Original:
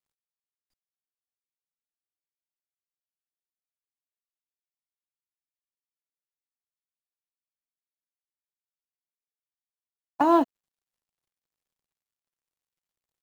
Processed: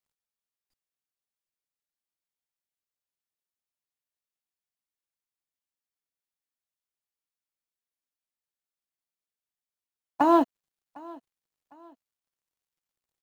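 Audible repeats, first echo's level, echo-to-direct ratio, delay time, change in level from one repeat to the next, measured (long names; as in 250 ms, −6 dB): 2, −23.0 dB, −22.5 dB, 755 ms, −9.0 dB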